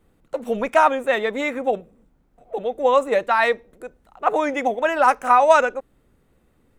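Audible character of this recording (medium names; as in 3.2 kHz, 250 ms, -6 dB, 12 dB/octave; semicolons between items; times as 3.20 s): noise floor -62 dBFS; spectral tilt -1.0 dB/octave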